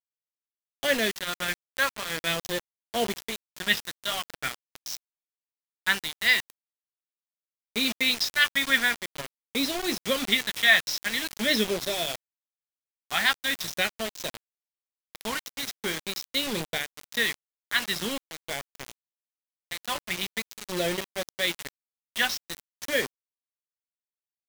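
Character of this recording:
phaser sweep stages 2, 0.44 Hz, lowest notch 430–1,200 Hz
tremolo triangle 1.4 Hz, depth 65%
a quantiser's noise floor 6 bits, dither none

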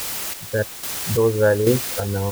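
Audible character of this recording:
a quantiser's noise floor 6 bits, dither triangular
chopped level 1.2 Hz, depth 60%, duty 40%

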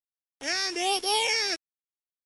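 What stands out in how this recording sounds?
a buzz of ramps at a fixed pitch in blocks of 8 samples
phaser sweep stages 6, 1.2 Hz, lowest notch 780–2,200 Hz
a quantiser's noise floor 8 bits, dither none
MP3

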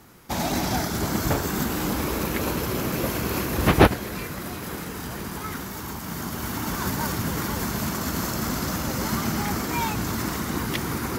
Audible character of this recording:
background noise floor −35 dBFS
spectral slope −4.5 dB per octave

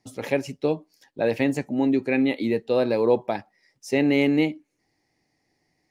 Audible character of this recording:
background noise floor −74 dBFS
spectral slope −5.0 dB per octave

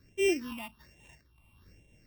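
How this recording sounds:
a buzz of ramps at a fixed pitch in blocks of 16 samples
phaser sweep stages 6, 1.2 Hz, lowest notch 430–1,300 Hz
amplitude modulation by smooth noise

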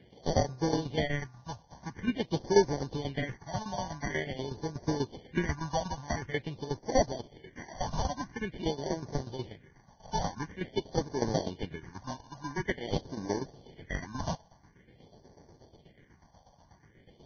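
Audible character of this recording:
aliases and images of a low sample rate 1,300 Hz, jitter 0%
phaser sweep stages 4, 0.47 Hz, lowest notch 350–2,800 Hz
tremolo saw down 8.2 Hz, depth 80%
Ogg Vorbis

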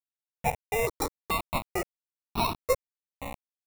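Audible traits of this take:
aliases and images of a low sample rate 1,600 Hz, jitter 0%
sample-and-hold tremolo 2.2 Hz
a quantiser's noise floor 6 bits, dither none
notches that jump at a steady rate 2.3 Hz 610–2,000 Hz

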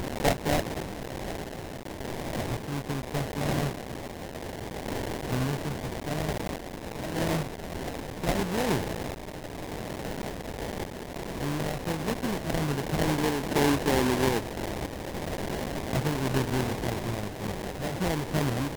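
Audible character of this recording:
a quantiser's noise floor 6 bits, dither triangular
sample-and-hold tremolo
aliases and images of a low sample rate 1,300 Hz, jitter 20%
Ogg Vorbis

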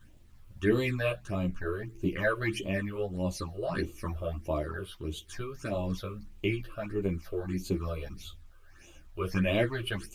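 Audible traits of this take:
phaser sweep stages 8, 1.6 Hz, lowest notch 230–1,700 Hz
a quantiser's noise floor 12 bits, dither none
tremolo triangle 0.54 Hz, depth 30%
a shimmering, thickened sound

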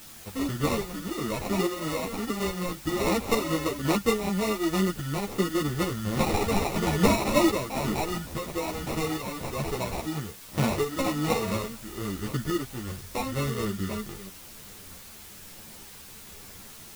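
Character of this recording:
aliases and images of a low sample rate 1,600 Hz, jitter 0%
tremolo saw up 1.2 Hz, depth 50%
a quantiser's noise floor 8 bits, dither triangular
a shimmering, thickened sound

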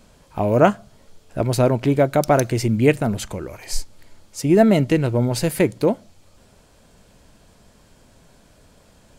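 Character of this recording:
background noise floor −54 dBFS
spectral slope −6.0 dB per octave

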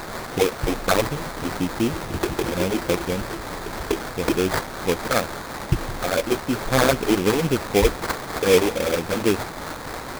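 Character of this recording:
a quantiser's noise floor 6 bits, dither triangular
phaser sweep stages 4, 3.9 Hz, lowest notch 120–3,700 Hz
aliases and images of a low sample rate 2,900 Hz, jitter 20%

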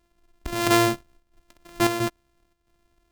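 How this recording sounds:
a buzz of ramps at a fixed pitch in blocks of 128 samples
chopped level 1.5 Hz, depth 60%, duty 80%

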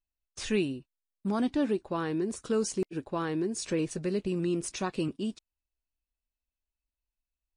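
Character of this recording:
background noise floor −92 dBFS
spectral slope −5.0 dB per octave

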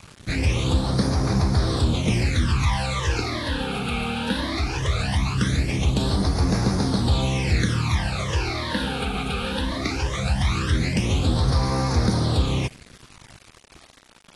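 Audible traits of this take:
phaser sweep stages 12, 0.19 Hz, lowest notch 100–2,900 Hz
a quantiser's noise floor 8 bits, dither none
AAC

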